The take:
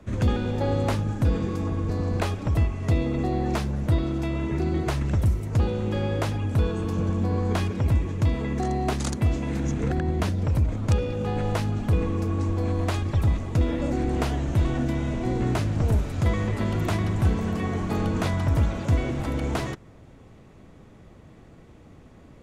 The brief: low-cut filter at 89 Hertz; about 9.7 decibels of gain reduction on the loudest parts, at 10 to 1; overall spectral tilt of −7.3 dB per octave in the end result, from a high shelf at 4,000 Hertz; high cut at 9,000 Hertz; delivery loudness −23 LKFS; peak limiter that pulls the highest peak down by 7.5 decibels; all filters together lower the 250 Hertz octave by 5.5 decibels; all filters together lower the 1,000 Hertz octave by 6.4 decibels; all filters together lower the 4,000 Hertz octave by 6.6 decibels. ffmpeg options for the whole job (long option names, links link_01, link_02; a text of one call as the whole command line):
ffmpeg -i in.wav -af "highpass=89,lowpass=9000,equalizer=frequency=250:width_type=o:gain=-7,equalizer=frequency=1000:width_type=o:gain=-8,highshelf=frequency=4000:gain=-6,equalizer=frequency=4000:width_type=o:gain=-4.5,acompressor=threshold=-30dB:ratio=10,volume=14.5dB,alimiter=limit=-14.5dB:level=0:latency=1" out.wav